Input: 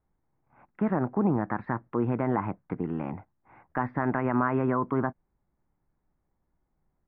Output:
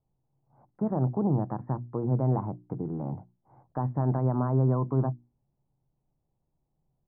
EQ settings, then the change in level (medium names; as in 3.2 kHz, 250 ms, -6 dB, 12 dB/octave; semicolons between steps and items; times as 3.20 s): four-pole ladder low-pass 1 kHz, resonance 25%; peaking EQ 130 Hz +13.5 dB 0.41 oct; hum notches 60/120/180/240/300/360 Hz; +2.5 dB